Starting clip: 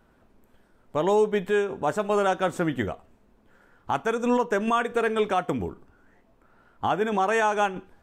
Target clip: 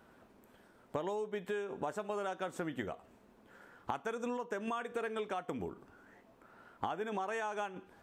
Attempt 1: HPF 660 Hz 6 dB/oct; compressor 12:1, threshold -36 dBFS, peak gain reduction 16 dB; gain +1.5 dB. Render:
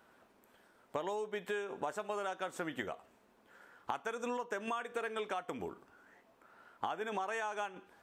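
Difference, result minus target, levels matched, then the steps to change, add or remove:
250 Hz band -3.0 dB
change: HPF 190 Hz 6 dB/oct

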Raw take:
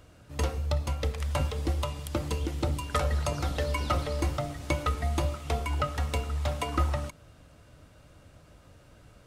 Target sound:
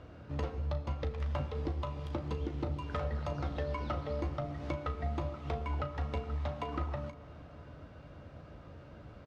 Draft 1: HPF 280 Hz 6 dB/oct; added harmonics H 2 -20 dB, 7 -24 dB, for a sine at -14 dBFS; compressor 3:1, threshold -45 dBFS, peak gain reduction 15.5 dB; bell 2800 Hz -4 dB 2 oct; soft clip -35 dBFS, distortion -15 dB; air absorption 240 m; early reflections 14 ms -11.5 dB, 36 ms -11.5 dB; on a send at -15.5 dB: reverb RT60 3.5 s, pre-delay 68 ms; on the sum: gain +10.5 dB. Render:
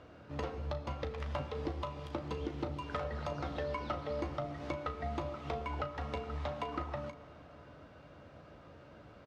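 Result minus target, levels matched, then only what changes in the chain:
125 Hz band -3.5 dB
change: HPF 71 Hz 6 dB/oct

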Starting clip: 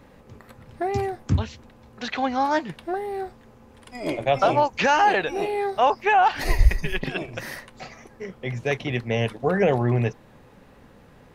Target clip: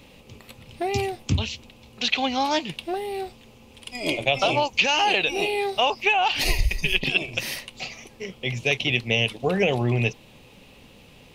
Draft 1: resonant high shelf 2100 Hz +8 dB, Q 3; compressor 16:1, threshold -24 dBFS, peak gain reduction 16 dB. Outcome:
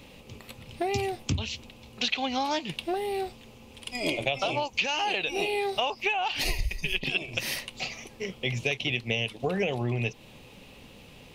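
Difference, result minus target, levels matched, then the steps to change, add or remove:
compressor: peak gain reduction +7.5 dB
change: compressor 16:1, threshold -16 dBFS, peak gain reduction 8.5 dB

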